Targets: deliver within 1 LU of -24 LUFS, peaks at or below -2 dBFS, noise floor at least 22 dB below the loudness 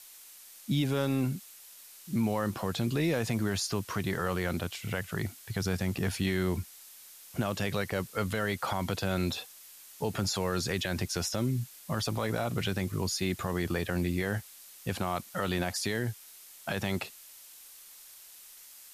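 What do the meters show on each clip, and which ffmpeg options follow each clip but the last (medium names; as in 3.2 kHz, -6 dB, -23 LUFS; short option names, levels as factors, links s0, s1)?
noise floor -52 dBFS; noise floor target -54 dBFS; loudness -32.0 LUFS; peak level -18.0 dBFS; loudness target -24.0 LUFS
-> -af "afftdn=nr=6:nf=-52"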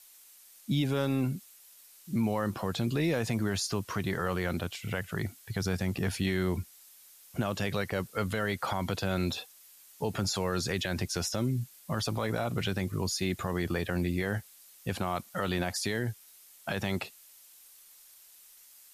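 noise floor -56 dBFS; loudness -32.5 LUFS; peak level -18.0 dBFS; loudness target -24.0 LUFS
-> -af "volume=2.66"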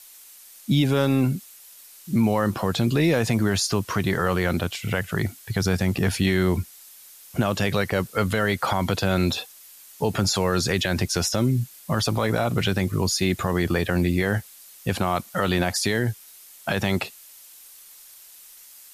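loudness -24.0 LUFS; peak level -9.5 dBFS; noise floor -48 dBFS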